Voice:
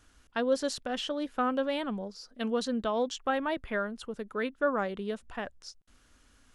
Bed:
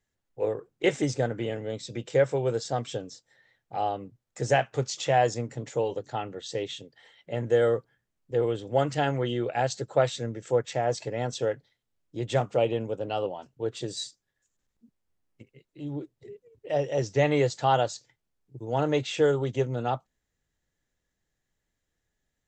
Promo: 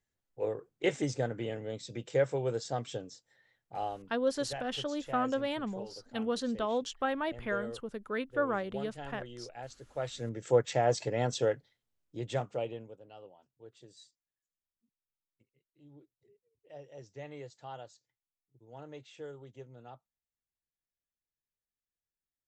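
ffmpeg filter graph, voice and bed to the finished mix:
-filter_complex "[0:a]adelay=3750,volume=0.75[s0];[1:a]volume=3.98,afade=t=out:st=3.66:d=0.63:silence=0.237137,afade=t=in:st=9.94:d=0.59:silence=0.133352,afade=t=out:st=11.32:d=1.69:silence=0.0841395[s1];[s0][s1]amix=inputs=2:normalize=0"

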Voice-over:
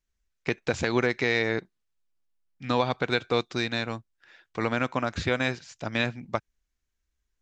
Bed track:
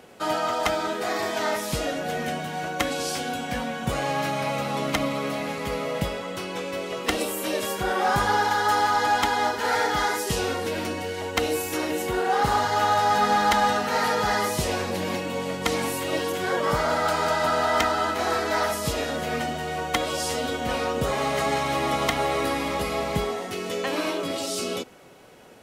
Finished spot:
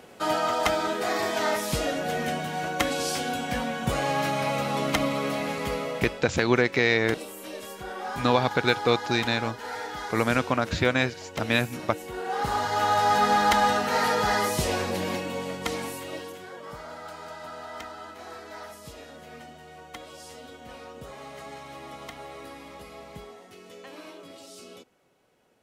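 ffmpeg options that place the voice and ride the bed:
-filter_complex "[0:a]adelay=5550,volume=1.41[s0];[1:a]volume=3.55,afade=t=out:st=5.64:d=0.67:silence=0.266073,afade=t=in:st=12.05:d=1.04:silence=0.281838,afade=t=out:st=14.88:d=1.62:silence=0.149624[s1];[s0][s1]amix=inputs=2:normalize=0"

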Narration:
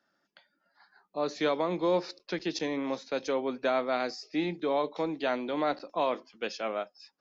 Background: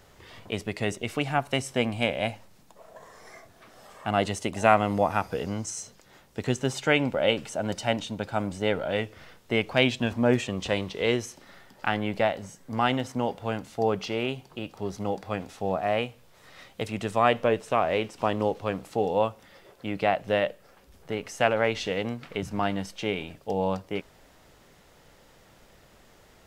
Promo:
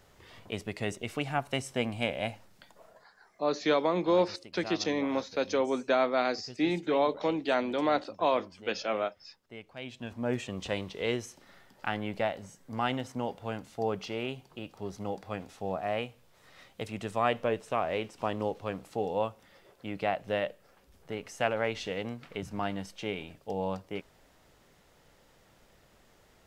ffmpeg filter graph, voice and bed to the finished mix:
-filter_complex "[0:a]adelay=2250,volume=1.26[s0];[1:a]volume=3.16,afade=t=out:st=2.84:d=0.22:silence=0.158489,afade=t=in:st=9.81:d=0.77:silence=0.177828[s1];[s0][s1]amix=inputs=2:normalize=0"

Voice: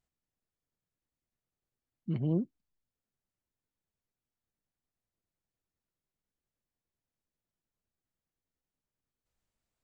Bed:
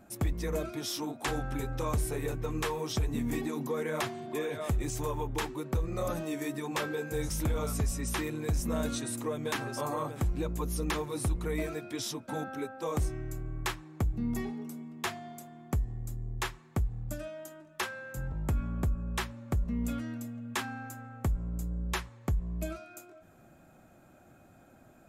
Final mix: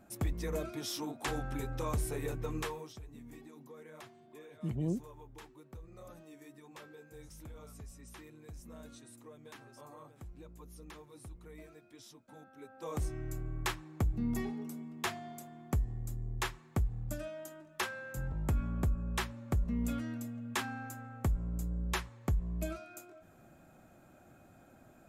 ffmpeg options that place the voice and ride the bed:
-filter_complex "[0:a]adelay=2550,volume=0.631[s0];[1:a]volume=5.01,afade=t=out:st=2.55:d=0.39:silence=0.16788,afade=t=in:st=12.55:d=0.76:silence=0.133352[s1];[s0][s1]amix=inputs=2:normalize=0"

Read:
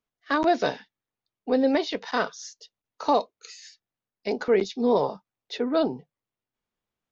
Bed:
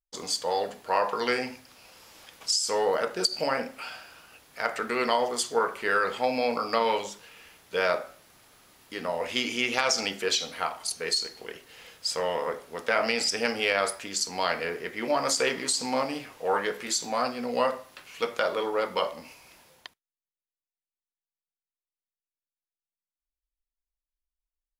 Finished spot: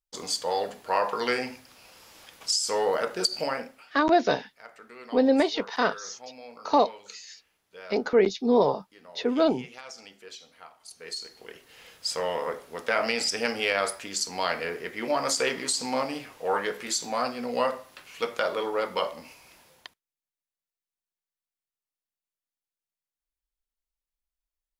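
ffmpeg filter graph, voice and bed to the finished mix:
-filter_complex "[0:a]adelay=3650,volume=1.12[s0];[1:a]volume=7.94,afade=t=out:st=3.37:d=0.51:silence=0.11885,afade=t=in:st=10.79:d=1.25:silence=0.125893[s1];[s0][s1]amix=inputs=2:normalize=0"

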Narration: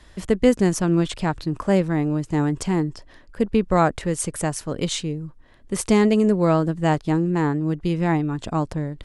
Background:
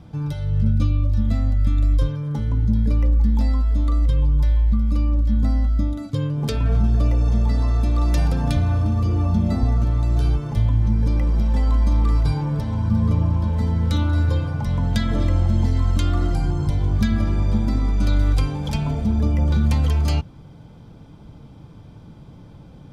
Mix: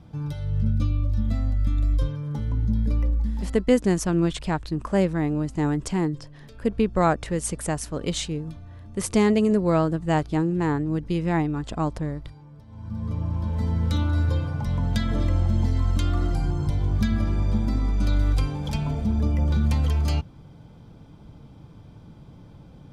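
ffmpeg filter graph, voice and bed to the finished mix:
-filter_complex "[0:a]adelay=3250,volume=0.75[s0];[1:a]volume=5.96,afade=t=out:st=2.99:d=0.7:silence=0.112202,afade=t=in:st=12.67:d=1.07:silence=0.1[s1];[s0][s1]amix=inputs=2:normalize=0"

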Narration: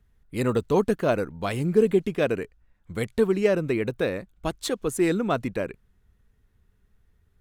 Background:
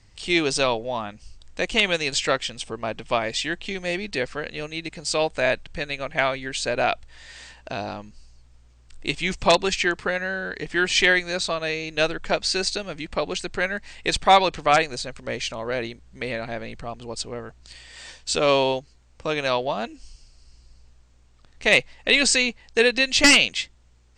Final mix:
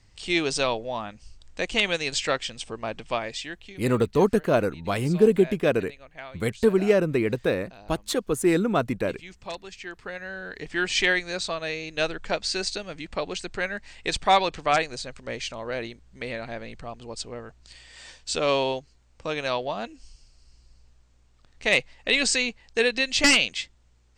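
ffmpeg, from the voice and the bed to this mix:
-filter_complex "[0:a]adelay=3450,volume=1.19[s0];[1:a]volume=3.76,afade=t=out:st=2.98:d=0.84:silence=0.16788,afade=t=in:st=9.78:d=1.03:silence=0.188365[s1];[s0][s1]amix=inputs=2:normalize=0"

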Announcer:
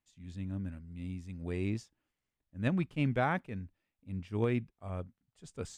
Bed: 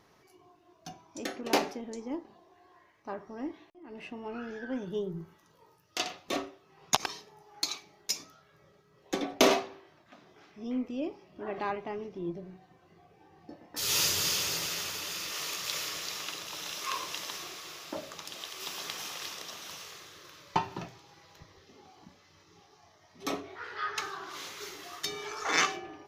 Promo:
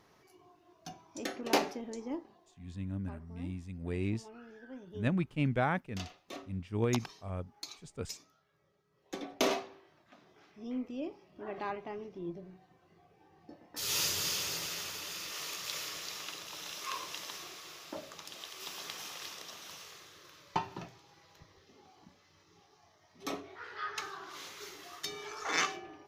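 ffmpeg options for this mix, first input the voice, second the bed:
-filter_complex "[0:a]adelay=2400,volume=1[s0];[1:a]volume=2.11,afade=t=out:st=2.09:d=0.55:silence=0.281838,afade=t=in:st=8.75:d=1.27:silence=0.398107[s1];[s0][s1]amix=inputs=2:normalize=0"

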